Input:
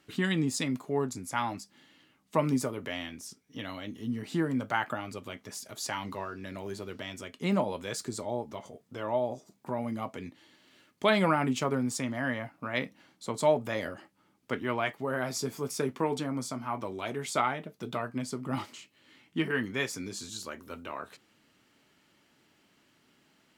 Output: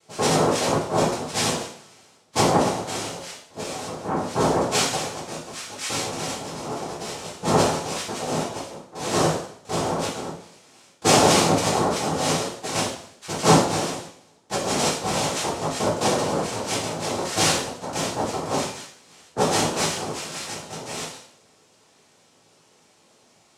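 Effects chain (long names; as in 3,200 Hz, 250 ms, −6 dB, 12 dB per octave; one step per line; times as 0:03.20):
cochlear-implant simulation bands 2
coupled-rooms reverb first 0.58 s, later 1.7 s, from −27 dB, DRR −6.5 dB
level +1 dB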